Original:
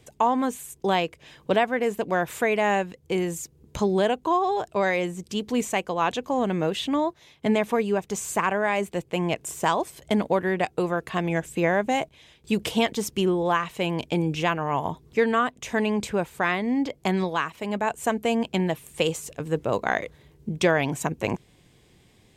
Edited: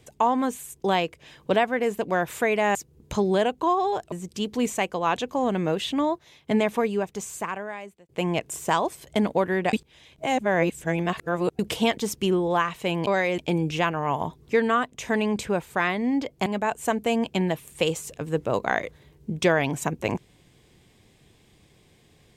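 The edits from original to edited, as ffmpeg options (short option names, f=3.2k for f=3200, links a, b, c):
-filter_complex "[0:a]asplit=9[a][b][c][d][e][f][g][h][i];[a]atrim=end=2.752[j];[b]atrim=start=3.388:end=4.762[k];[c]atrim=start=5.068:end=9.04,asetpts=PTS-STARTPTS,afade=t=out:st=2.632:d=1.34[l];[d]atrim=start=9.04:end=10.682,asetpts=PTS-STARTPTS,afade=t=in:d=0.004:c=hsin[m];[e]atrim=start=10.678:end=12.542,asetpts=PTS-STARTPTS,areverse[n];[f]atrim=start=12.538:end=14.022[o];[g]atrim=start=4.758:end=5.072[p];[h]atrim=start=14.018:end=17.102[q];[i]atrim=start=17.648[r];[j][k]acrossfade=d=0.004:c1=hsin:c2=hsin[s];[l][m]concat=n=2:v=0:a=1[t];[s][t]acrossfade=d=0.004:c1=hsin:c2=hsin[u];[u][n]acrossfade=d=0.004:c1=hsin:c2=hsin[v];[v][o]acrossfade=d=0.004:c1=hsin:c2=hsin[w];[w][p]acrossfade=d=0.004:c1=hsin:c2=hsin[x];[x][q]acrossfade=d=0.004:c1=hsin:c2=hsin[y];[y][r]acrossfade=d=0.004:c1=hsin:c2=hsin"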